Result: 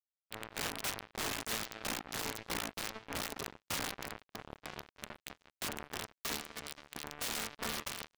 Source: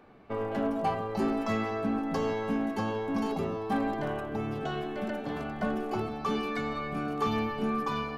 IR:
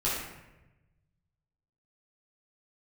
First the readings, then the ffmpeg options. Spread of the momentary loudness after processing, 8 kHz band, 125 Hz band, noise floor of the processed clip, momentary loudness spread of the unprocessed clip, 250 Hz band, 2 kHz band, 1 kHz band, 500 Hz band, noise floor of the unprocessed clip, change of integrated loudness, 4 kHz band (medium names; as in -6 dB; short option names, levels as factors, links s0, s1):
11 LU, no reading, -14.0 dB, under -85 dBFS, 5 LU, -18.0 dB, -3.0 dB, -12.0 dB, -15.5 dB, -38 dBFS, -8.0 dB, +4.0 dB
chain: -af "aeval=exprs='(mod(15*val(0)+1,2)-1)/15':c=same,acrusher=bits=3:mix=0:aa=0.5,volume=0.841"